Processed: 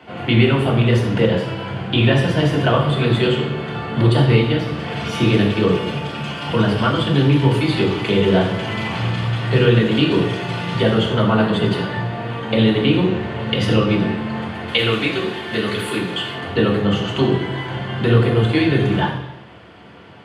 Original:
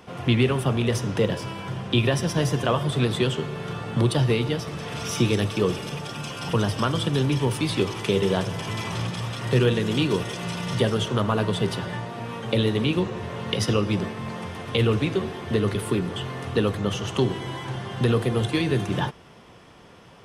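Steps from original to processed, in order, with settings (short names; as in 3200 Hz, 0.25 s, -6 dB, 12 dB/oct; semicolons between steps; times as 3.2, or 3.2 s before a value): 14.68–16.33 tilt +3 dB/oct; reverb RT60 0.85 s, pre-delay 3 ms, DRR -3 dB; gain -7.5 dB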